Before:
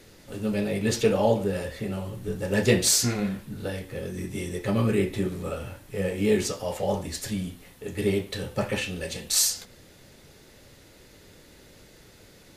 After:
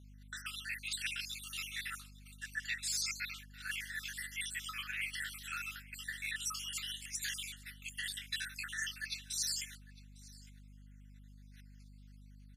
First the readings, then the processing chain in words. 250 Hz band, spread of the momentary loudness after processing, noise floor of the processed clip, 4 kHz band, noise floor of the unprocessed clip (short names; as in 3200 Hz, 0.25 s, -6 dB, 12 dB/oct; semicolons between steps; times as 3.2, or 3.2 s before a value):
-32.5 dB, 23 LU, -56 dBFS, -7.0 dB, -53 dBFS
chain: random spectral dropouts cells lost 61%; steep high-pass 1400 Hz 72 dB/oct; gate -56 dBFS, range -25 dB; high shelf 11000 Hz -5 dB; reverse; compressor 5:1, threshold -47 dBFS, peak gain reduction 22 dB; reverse; hum 50 Hz, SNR 12 dB; on a send: echo 0.854 s -22.5 dB; on the sum: added harmonics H 6 -42 dB, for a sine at -32.5 dBFS; gain +9.5 dB